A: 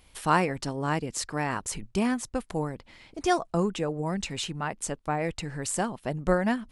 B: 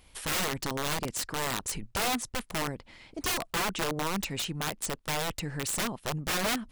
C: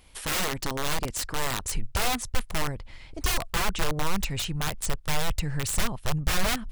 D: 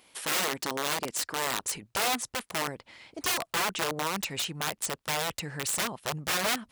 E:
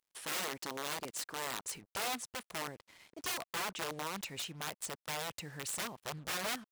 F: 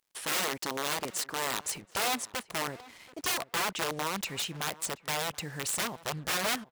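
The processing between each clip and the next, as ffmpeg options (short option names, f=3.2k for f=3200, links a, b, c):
-af "aeval=exprs='(mod(15.8*val(0)+1,2)-1)/15.8':c=same"
-af "asubboost=boost=7.5:cutoff=95,volume=2dB"
-af "highpass=250"
-af "acrusher=bits=7:mix=0:aa=0.5,volume=-9dB"
-filter_complex "[0:a]asplit=2[a][b];[b]adelay=730,lowpass=f=2.3k:p=1,volume=-19dB,asplit=2[c][d];[d]adelay=730,lowpass=f=2.3k:p=1,volume=0.19[e];[a][c][e]amix=inputs=3:normalize=0,volume=7dB"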